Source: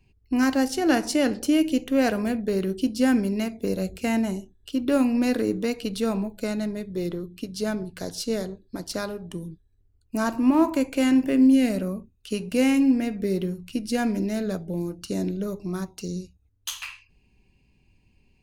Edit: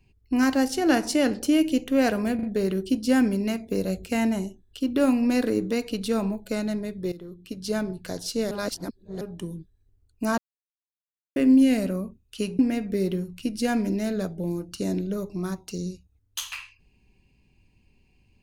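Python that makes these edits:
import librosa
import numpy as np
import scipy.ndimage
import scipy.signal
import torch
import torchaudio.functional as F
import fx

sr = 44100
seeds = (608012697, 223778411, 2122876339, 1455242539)

y = fx.edit(x, sr, fx.stutter(start_s=2.35, slice_s=0.04, count=3),
    fx.fade_in_from(start_s=7.04, length_s=0.55, floor_db=-16.0),
    fx.reverse_span(start_s=8.43, length_s=0.7),
    fx.silence(start_s=10.3, length_s=0.98),
    fx.cut(start_s=12.51, length_s=0.38), tone=tone)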